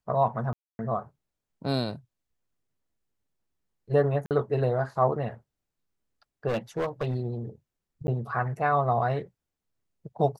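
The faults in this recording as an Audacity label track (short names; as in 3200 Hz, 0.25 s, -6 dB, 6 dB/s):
0.530000	0.790000	gap 0.26 s
4.260000	4.310000	gap 48 ms
6.470000	7.160000	clipped -24 dBFS
8.070000	8.080000	gap 10 ms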